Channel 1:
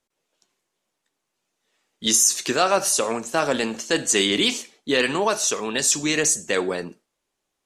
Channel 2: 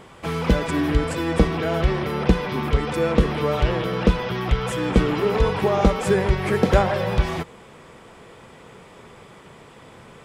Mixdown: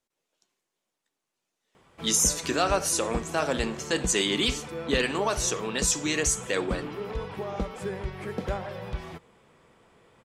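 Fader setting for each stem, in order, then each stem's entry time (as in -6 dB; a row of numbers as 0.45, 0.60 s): -5.5, -14.0 dB; 0.00, 1.75 s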